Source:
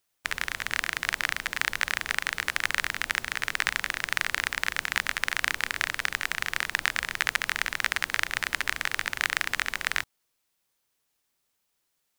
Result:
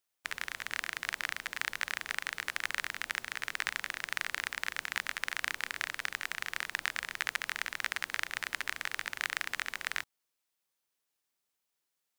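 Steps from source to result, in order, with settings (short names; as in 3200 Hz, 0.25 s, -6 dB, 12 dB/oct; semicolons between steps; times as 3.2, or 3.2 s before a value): low shelf 140 Hz -8.5 dB; gain -7.5 dB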